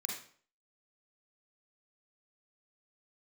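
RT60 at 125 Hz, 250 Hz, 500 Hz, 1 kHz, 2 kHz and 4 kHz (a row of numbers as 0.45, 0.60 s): 0.50, 0.50, 0.50, 0.50, 0.45, 0.40 s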